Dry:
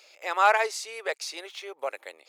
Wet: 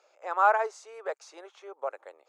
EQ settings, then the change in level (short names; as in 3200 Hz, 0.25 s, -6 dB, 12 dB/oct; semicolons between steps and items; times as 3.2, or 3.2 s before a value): HPF 410 Hz 12 dB/oct; air absorption 150 m; band shelf 3100 Hz -14 dB; 0.0 dB